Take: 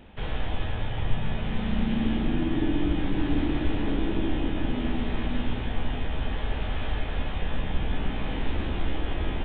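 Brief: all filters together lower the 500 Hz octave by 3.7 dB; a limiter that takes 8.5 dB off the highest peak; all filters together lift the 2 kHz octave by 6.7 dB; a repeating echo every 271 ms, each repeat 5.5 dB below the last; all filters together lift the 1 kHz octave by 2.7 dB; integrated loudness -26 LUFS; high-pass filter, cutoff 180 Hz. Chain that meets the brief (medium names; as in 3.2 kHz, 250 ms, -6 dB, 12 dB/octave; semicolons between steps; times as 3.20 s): high-pass 180 Hz; peaking EQ 500 Hz -6.5 dB; peaking EQ 1 kHz +4 dB; peaking EQ 2 kHz +7.5 dB; peak limiter -24.5 dBFS; feedback delay 271 ms, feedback 53%, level -5.5 dB; trim +6 dB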